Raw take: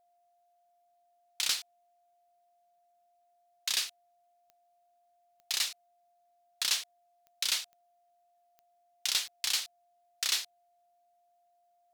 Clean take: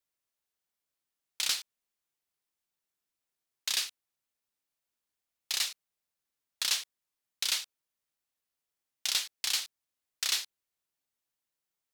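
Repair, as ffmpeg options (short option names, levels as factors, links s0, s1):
-af "adeclick=t=4,bandreject=f=700:w=30"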